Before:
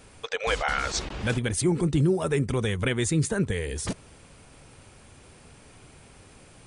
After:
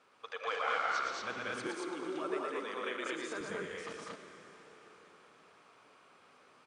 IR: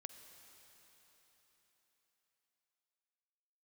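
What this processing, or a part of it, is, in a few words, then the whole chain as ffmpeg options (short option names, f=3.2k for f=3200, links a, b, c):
station announcement: -filter_complex "[0:a]highpass=350,lowpass=4.6k,equalizer=f=1.2k:t=o:w=0.46:g=11,aecho=1:1:116.6|195.3|227.4:0.631|0.708|0.891[a];[1:a]atrim=start_sample=2205[b];[a][b]afir=irnorm=-1:irlink=0,asettb=1/sr,asplit=3[c][d][e];[c]atrim=end=1.674[f];[d]atrim=start=1.67:end=3.41,asetpts=PTS-STARTPTS,afade=t=in:d=0.004:c=qsin,afade=t=out:st=1.736:d=0.004:c=qsin,highpass=f=240:w=0.5412,highpass=f=240:w=1.3066[g];[e]atrim=start=3.406[h];[f][g]acrossfade=d=0.004:c1=hsin:c2=qsin[i];[i][h]acrossfade=d=0.004:c1=qsin:c2=hsin,volume=-8dB"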